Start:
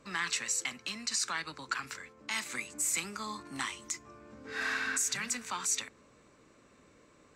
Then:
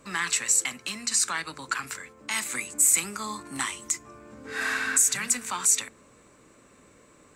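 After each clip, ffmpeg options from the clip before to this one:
-af "highshelf=f=6900:t=q:w=1.5:g=6.5,bandreject=f=76.29:t=h:w=4,bandreject=f=152.58:t=h:w=4,bandreject=f=228.87:t=h:w=4,bandreject=f=305.16:t=h:w=4,bandreject=f=381.45:t=h:w=4,bandreject=f=457.74:t=h:w=4,bandreject=f=534.03:t=h:w=4,bandreject=f=610.32:t=h:w=4,bandreject=f=686.61:t=h:w=4,volume=1.88"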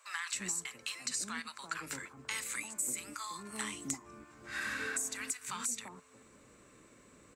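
-filter_complex "[0:a]acompressor=threshold=0.0282:ratio=6,acrossover=split=780[s0][s1];[s0]adelay=340[s2];[s2][s1]amix=inputs=2:normalize=0,volume=0.668"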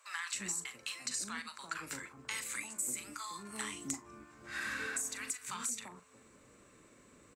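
-filter_complex "[0:a]asplit=2[s0][s1];[s1]adelay=40,volume=0.251[s2];[s0][s2]amix=inputs=2:normalize=0,volume=0.841"

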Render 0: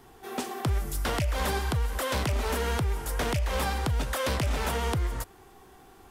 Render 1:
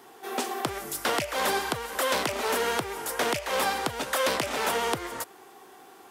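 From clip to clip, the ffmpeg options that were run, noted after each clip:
-af "highpass=320,volume=1.68"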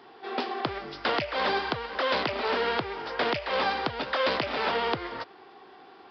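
-af "aresample=11025,aresample=44100"

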